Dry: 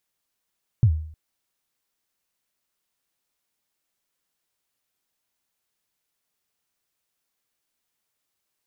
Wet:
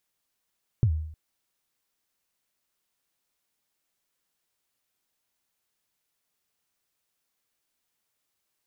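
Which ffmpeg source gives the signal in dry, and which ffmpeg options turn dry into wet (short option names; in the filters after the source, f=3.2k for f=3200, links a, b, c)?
-f lavfi -i "aevalsrc='0.316*pow(10,-3*t/0.57)*sin(2*PI*(130*0.076/log(78/130)*(exp(log(78/130)*min(t,0.076)/0.076)-1)+78*max(t-0.076,0)))':d=0.31:s=44100"
-af "acompressor=threshold=-20dB:ratio=6"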